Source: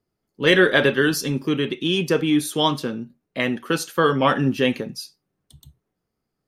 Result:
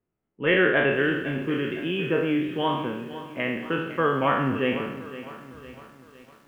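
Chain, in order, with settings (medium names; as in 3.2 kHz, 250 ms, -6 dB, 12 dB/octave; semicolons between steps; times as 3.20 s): spectral sustain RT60 0.81 s; steep low-pass 3 kHz 72 dB/octave; bit-crushed delay 508 ms, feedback 55%, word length 7-bit, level -14 dB; trim -6.5 dB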